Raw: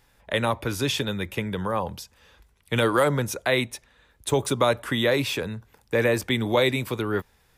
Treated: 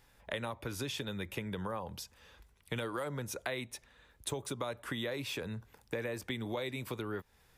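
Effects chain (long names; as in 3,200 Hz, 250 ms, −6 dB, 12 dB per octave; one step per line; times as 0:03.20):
downward compressor 6 to 1, threshold −32 dBFS, peak gain reduction 14.5 dB
level −3.5 dB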